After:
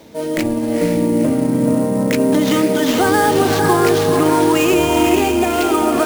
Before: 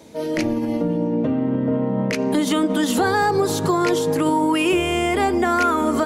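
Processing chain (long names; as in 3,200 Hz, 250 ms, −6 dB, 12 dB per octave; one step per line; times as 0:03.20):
gain on a spectral selection 0:04.74–0:05.74, 790–2,300 Hz −9 dB
feedback delay with all-pass diffusion 484 ms, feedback 42%, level −3 dB
sample-rate reduction 9,800 Hz, jitter 20%
level +3 dB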